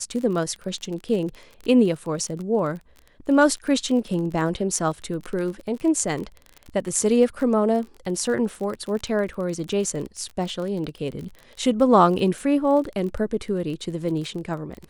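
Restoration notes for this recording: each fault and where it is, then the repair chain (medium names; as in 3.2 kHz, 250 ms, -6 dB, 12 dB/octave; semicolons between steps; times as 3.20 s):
crackle 29 per s -30 dBFS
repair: de-click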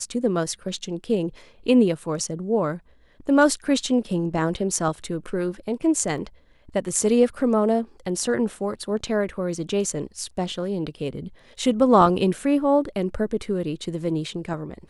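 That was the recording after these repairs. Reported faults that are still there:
nothing left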